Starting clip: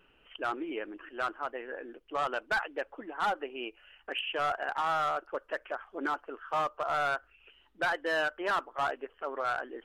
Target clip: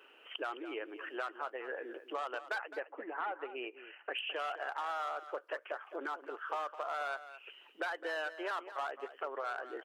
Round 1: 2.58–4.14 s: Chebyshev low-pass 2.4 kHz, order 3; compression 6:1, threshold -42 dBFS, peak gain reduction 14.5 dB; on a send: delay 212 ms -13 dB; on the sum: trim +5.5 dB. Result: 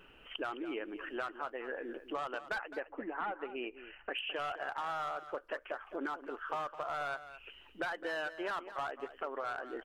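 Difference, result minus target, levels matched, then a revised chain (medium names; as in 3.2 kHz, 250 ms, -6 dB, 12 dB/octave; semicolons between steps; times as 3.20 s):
250 Hz band +4.5 dB
2.58–4.14 s: Chebyshev low-pass 2.4 kHz, order 3; compression 6:1, threshold -42 dBFS, peak gain reduction 14.5 dB; high-pass 350 Hz 24 dB/octave; on a send: delay 212 ms -13 dB; on the sum: trim +5.5 dB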